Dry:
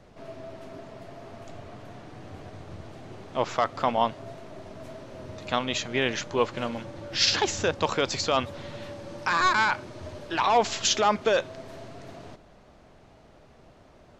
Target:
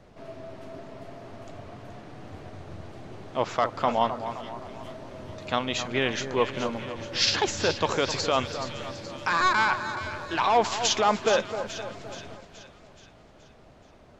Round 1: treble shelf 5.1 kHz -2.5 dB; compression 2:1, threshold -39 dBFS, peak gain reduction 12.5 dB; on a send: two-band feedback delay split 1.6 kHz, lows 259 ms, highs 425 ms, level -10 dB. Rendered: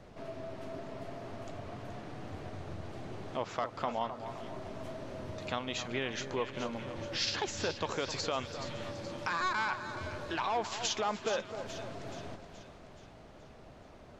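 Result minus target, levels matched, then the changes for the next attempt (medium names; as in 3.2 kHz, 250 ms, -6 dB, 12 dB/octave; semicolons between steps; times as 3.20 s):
compression: peak gain reduction +12.5 dB
remove: compression 2:1, threshold -39 dBFS, peak gain reduction 12.5 dB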